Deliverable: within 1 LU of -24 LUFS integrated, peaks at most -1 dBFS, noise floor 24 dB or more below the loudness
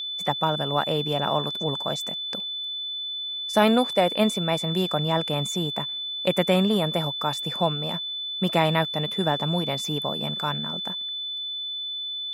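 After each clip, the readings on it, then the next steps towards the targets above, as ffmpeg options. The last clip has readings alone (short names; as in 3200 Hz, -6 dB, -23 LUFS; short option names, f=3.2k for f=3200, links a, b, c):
steady tone 3500 Hz; tone level -29 dBFS; loudness -25.0 LUFS; peak -7.0 dBFS; loudness target -24.0 LUFS
-> -af "bandreject=f=3.5k:w=30"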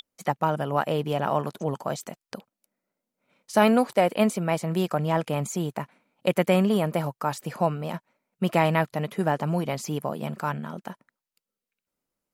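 steady tone none; loudness -26.0 LUFS; peak -7.5 dBFS; loudness target -24.0 LUFS
-> -af "volume=2dB"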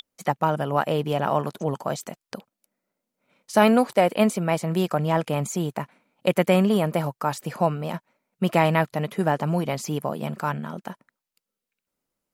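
loudness -24.0 LUFS; peak -5.5 dBFS; noise floor -87 dBFS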